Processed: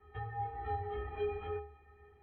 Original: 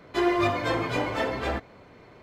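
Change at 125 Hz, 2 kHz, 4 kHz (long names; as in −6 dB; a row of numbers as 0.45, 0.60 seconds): −8.5, −20.0, −24.0 decibels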